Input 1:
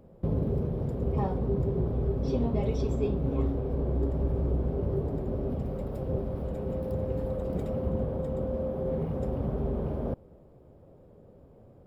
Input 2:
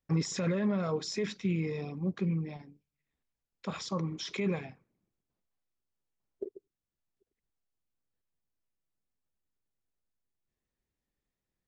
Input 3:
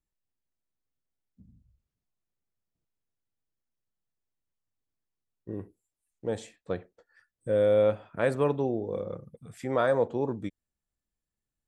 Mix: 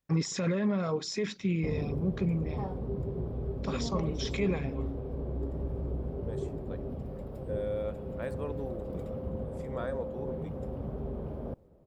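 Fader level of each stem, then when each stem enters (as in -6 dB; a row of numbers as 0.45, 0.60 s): -6.5, +1.0, -12.5 dB; 1.40, 0.00, 0.00 s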